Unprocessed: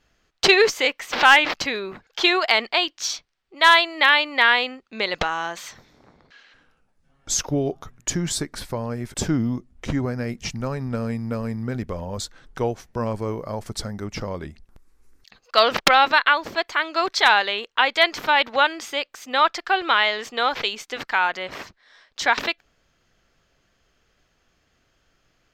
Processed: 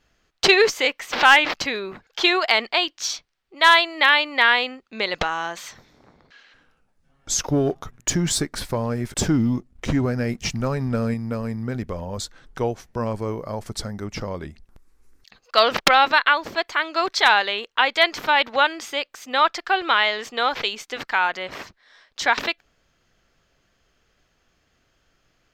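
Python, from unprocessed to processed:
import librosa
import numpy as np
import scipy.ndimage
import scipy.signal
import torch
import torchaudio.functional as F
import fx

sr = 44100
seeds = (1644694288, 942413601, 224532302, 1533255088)

y = fx.leveller(x, sr, passes=1, at=(7.43, 11.14))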